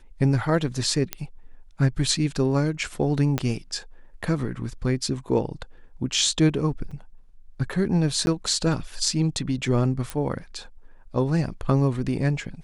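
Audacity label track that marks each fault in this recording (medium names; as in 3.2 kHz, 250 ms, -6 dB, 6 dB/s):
1.130000	1.130000	pop -9 dBFS
3.380000	3.380000	pop -10 dBFS
6.910000	6.910000	dropout 4.9 ms
8.260000	8.270000	dropout 11 ms
10.100000	10.100000	pop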